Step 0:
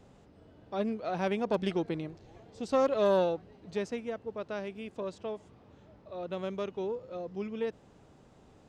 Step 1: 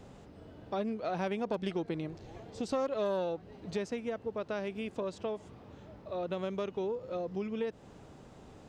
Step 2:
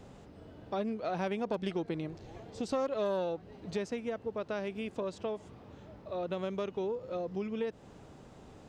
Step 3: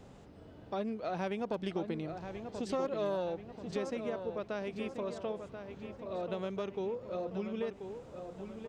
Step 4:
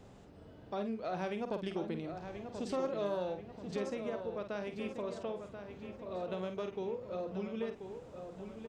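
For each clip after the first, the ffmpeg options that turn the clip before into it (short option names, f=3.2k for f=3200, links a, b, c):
-af "acompressor=threshold=-39dB:ratio=3,volume=5.5dB"
-af anull
-filter_complex "[0:a]asplit=2[a][b];[b]adelay=1034,lowpass=f=3.5k:p=1,volume=-8dB,asplit=2[c][d];[d]adelay=1034,lowpass=f=3.5k:p=1,volume=0.5,asplit=2[e][f];[f]adelay=1034,lowpass=f=3.5k:p=1,volume=0.5,asplit=2[g][h];[h]adelay=1034,lowpass=f=3.5k:p=1,volume=0.5,asplit=2[i][j];[j]adelay=1034,lowpass=f=3.5k:p=1,volume=0.5,asplit=2[k][l];[l]adelay=1034,lowpass=f=3.5k:p=1,volume=0.5[m];[a][c][e][g][i][k][m]amix=inputs=7:normalize=0,volume=-2dB"
-filter_complex "[0:a]asplit=2[a][b];[b]adelay=49,volume=-8.5dB[c];[a][c]amix=inputs=2:normalize=0,volume=-2dB"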